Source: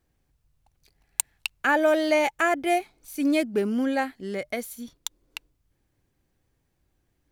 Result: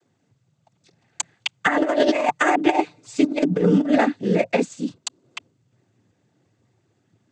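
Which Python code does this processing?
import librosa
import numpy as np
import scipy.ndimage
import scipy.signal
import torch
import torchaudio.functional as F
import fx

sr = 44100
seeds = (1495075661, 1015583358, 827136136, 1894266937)

y = fx.tilt_eq(x, sr, slope=-1.5)
y = fx.noise_vocoder(y, sr, seeds[0], bands=16)
y = fx.comb(y, sr, ms=6.7, depth=0.95, at=(1.68, 3.98))
y = fx.over_compress(y, sr, threshold_db=-22.0, ratio=-0.5)
y = F.gain(torch.from_numpy(y), 5.0).numpy()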